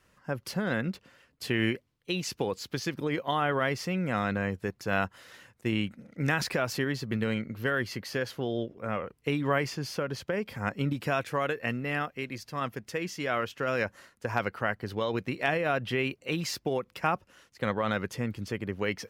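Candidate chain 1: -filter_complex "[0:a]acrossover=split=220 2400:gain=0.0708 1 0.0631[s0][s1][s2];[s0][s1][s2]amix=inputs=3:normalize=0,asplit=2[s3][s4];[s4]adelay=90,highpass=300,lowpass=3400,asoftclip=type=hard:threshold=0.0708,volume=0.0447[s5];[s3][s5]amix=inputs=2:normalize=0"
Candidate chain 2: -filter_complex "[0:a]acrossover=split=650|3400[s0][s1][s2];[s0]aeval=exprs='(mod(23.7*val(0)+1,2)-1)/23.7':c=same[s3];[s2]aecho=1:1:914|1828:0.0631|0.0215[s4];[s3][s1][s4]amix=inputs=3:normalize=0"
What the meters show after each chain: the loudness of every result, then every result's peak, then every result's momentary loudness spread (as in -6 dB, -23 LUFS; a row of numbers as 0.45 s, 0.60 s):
-33.5 LUFS, -32.5 LUFS; -14.0 dBFS, -12.0 dBFS; 8 LU, 7 LU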